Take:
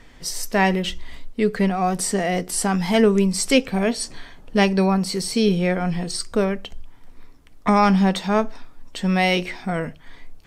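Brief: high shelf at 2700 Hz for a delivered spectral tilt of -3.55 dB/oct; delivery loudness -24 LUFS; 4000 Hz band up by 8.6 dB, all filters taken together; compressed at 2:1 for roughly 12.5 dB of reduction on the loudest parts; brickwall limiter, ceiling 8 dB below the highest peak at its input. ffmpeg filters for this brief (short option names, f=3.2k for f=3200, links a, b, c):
-af "highshelf=f=2.7k:g=7,equalizer=f=4k:t=o:g=5.5,acompressor=threshold=-34dB:ratio=2,volume=6.5dB,alimiter=limit=-13.5dB:level=0:latency=1"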